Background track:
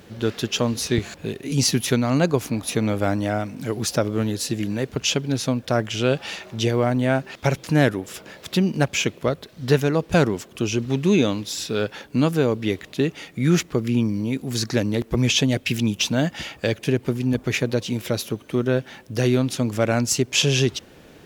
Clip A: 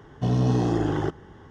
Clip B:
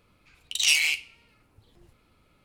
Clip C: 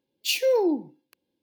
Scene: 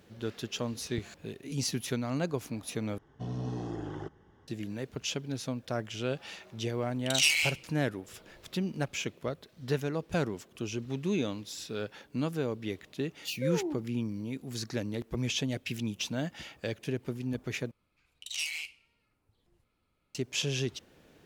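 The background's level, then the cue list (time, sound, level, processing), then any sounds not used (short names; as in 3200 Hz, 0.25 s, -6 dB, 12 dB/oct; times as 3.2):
background track -12.5 dB
2.98 replace with A -14 dB
6.55 add B -4 dB + short-mantissa float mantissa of 4-bit
12.99 add C -11.5 dB + spectral noise reduction 10 dB
17.71 replace with B -13.5 dB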